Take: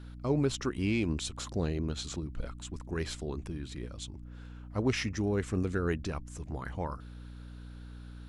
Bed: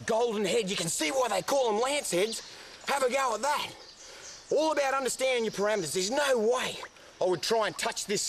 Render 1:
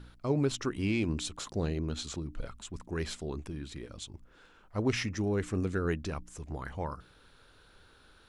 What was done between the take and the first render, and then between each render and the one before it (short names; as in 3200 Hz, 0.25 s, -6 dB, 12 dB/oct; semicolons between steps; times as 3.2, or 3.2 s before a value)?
de-hum 60 Hz, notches 5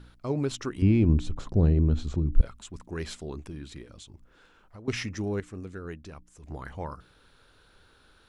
0.82–2.41 tilt -4 dB/oct; 3.82–4.88 compressor, threshold -43 dBFS; 5.4–6.43 gain -8 dB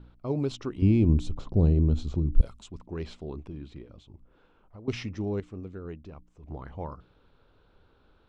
low-pass opened by the level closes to 2100 Hz, open at -17 dBFS; bell 1700 Hz -10 dB 0.82 oct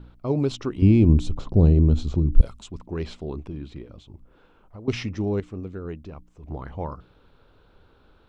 gain +5.5 dB